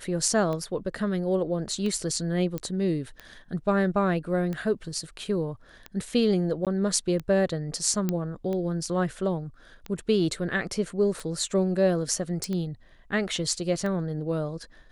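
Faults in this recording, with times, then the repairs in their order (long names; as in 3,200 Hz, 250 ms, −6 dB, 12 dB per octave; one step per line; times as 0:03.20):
scratch tick 45 rpm −21 dBFS
0:02.58: click −17 dBFS
0:06.65–0:06.67: drop-out 17 ms
0:08.09: click −13 dBFS
0:12.44: click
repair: click removal
repair the gap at 0:06.65, 17 ms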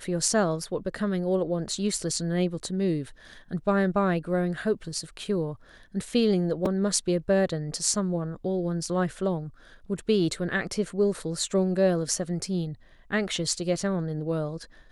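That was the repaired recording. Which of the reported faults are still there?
none of them is left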